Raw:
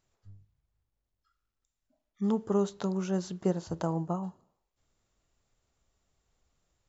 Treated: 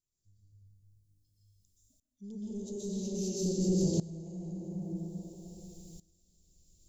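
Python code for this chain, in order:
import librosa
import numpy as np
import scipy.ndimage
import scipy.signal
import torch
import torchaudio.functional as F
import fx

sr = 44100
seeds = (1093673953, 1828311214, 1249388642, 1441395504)

y = fx.high_shelf(x, sr, hz=3000.0, db=12.0)
y = fx.rev_plate(y, sr, seeds[0], rt60_s=2.5, hf_ratio=0.6, predelay_ms=110, drr_db=-8.0)
y = fx.rider(y, sr, range_db=10, speed_s=0.5)
y = 10.0 ** (-19.5 / 20.0) * np.tanh(y / 10.0 ** (-19.5 / 20.0))
y = scipy.signal.sosfilt(scipy.signal.cheby1(2, 1.0, [360.0, 5000.0], 'bandstop', fs=sr, output='sos'), y)
y = fx.low_shelf(y, sr, hz=100.0, db=6.0)
y = fx.tremolo_decay(y, sr, direction='swelling', hz=0.5, depth_db=19)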